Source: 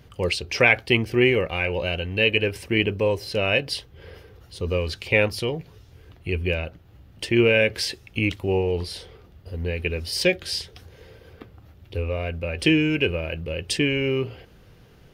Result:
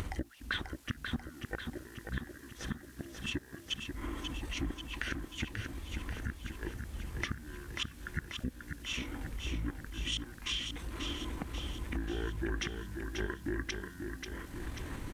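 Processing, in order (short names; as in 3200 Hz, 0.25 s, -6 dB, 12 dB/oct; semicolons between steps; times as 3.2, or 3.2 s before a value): in parallel at +1 dB: limiter -14 dBFS, peak gain reduction 11 dB; on the sum: upward compressor, threshold -23 dBFS; flipped gate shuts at -9 dBFS, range -29 dB; added noise white -55 dBFS; compressor 5:1, threshold -27 dBFS, peak gain reduction 11 dB; pitch shift -7.5 st; bit-crush 11-bit; on a send: feedback echo 0.538 s, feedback 59%, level -6 dB; on the sum: gain -6.5 dB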